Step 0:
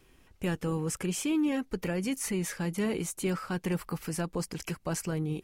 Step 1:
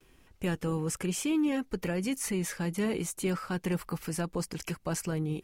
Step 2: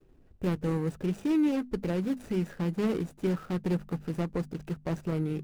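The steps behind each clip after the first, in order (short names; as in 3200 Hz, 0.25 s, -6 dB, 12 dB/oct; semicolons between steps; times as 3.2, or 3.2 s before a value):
gate with hold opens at -52 dBFS
median filter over 41 samples; notches 50/100/150/200/250 Hz; gain +3 dB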